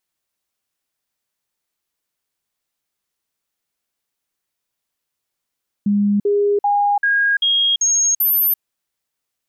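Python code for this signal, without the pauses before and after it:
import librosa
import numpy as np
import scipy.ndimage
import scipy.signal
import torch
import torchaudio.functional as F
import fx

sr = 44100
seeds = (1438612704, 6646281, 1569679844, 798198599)

y = fx.stepped_sweep(sr, from_hz=204.0, direction='up', per_octave=1, tones=7, dwell_s=0.34, gap_s=0.05, level_db=-13.0)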